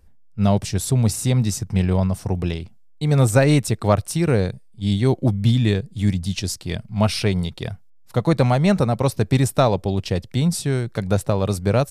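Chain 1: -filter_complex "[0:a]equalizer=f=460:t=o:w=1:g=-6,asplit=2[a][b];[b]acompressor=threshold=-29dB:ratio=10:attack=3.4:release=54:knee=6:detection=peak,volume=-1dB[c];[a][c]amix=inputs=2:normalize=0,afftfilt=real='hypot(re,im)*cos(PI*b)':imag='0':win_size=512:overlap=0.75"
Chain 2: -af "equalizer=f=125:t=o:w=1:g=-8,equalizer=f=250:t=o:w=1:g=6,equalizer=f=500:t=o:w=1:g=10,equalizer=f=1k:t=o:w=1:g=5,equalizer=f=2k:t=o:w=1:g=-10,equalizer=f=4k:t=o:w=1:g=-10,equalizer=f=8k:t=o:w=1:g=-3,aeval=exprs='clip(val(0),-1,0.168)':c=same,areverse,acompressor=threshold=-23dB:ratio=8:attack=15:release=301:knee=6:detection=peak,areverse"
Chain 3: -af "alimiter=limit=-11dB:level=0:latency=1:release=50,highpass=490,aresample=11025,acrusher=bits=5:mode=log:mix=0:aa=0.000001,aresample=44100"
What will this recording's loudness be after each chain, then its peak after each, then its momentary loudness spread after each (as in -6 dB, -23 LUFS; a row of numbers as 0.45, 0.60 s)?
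-28.0, -28.5, -30.5 LUFS; -6.5, -8.0, -9.5 dBFS; 9, 5, 10 LU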